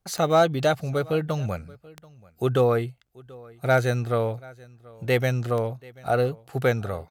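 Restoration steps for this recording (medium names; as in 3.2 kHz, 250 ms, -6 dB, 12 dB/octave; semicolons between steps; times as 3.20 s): clip repair -10 dBFS; de-click; inverse comb 734 ms -23.5 dB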